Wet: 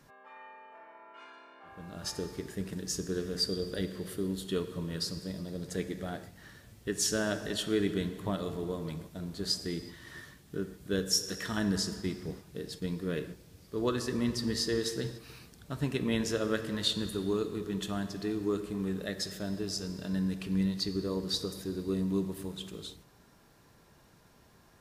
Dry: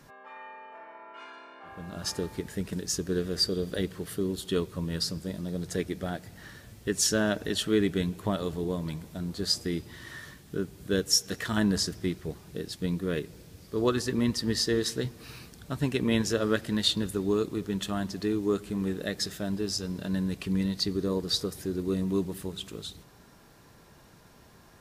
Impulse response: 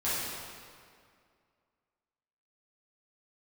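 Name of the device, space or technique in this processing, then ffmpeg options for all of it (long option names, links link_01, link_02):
keyed gated reverb: -filter_complex "[0:a]asplit=3[link_01][link_02][link_03];[1:a]atrim=start_sample=2205[link_04];[link_02][link_04]afir=irnorm=-1:irlink=0[link_05];[link_03]apad=whole_len=1094092[link_06];[link_05][link_06]sidechaingate=range=-33dB:threshold=-42dB:ratio=16:detection=peak,volume=-16.5dB[link_07];[link_01][link_07]amix=inputs=2:normalize=0,volume=-5.5dB"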